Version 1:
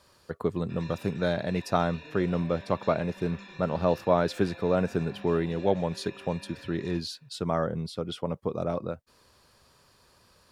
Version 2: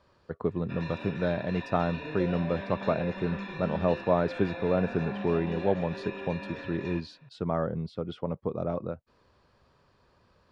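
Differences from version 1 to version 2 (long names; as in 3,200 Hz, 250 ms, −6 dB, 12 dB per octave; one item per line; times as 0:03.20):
background +11.5 dB
master: add head-to-tape spacing loss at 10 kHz 26 dB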